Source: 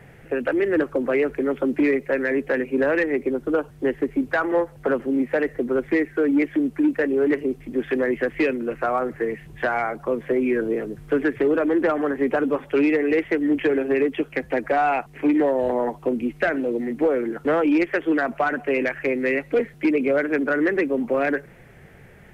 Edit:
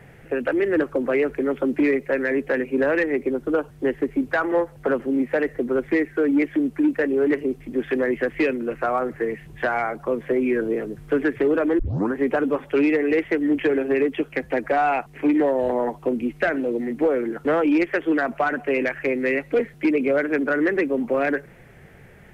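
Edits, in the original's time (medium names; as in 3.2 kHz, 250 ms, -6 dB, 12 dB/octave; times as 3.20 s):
11.79 s: tape start 0.35 s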